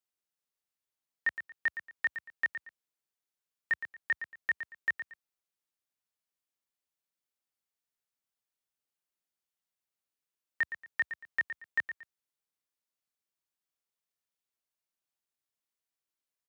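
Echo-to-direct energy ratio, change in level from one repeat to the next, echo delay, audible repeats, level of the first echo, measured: -10.0 dB, -11.5 dB, 115 ms, 2, -10.5 dB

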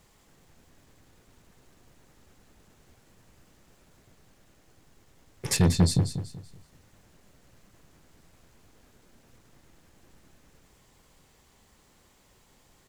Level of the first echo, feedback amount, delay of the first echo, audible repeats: -9.5 dB, 33%, 190 ms, 3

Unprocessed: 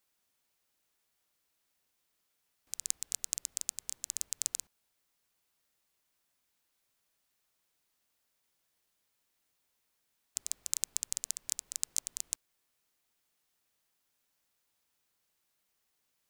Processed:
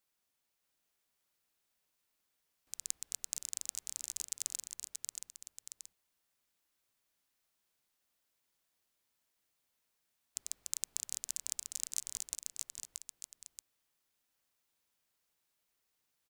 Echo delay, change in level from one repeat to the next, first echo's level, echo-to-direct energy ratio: 629 ms, -6.5 dB, -4.0 dB, -3.0 dB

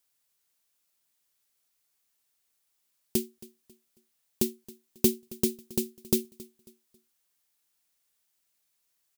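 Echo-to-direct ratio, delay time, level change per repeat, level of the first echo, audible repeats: -20.5 dB, 272 ms, -9.5 dB, -21.0 dB, 2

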